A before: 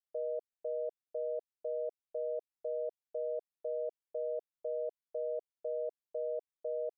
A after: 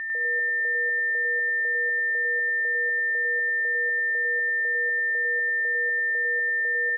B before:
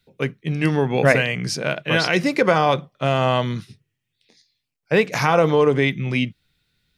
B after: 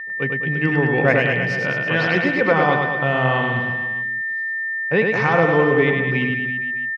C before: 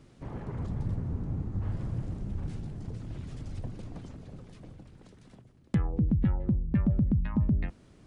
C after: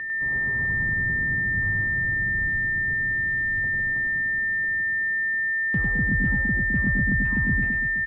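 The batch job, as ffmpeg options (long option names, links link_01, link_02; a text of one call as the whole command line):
ffmpeg -i in.wav -filter_complex "[0:a]bandreject=frequency=620:width=12,aeval=exprs='val(0)+0.0501*sin(2*PI*1800*n/s)':channel_layout=same,lowpass=2700,asplit=2[link_01][link_02];[link_02]aecho=0:1:100|210|331|464.1|610.5:0.631|0.398|0.251|0.158|0.1[link_03];[link_01][link_03]amix=inputs=2:normalize=0,volume=-1.5dB" out.wav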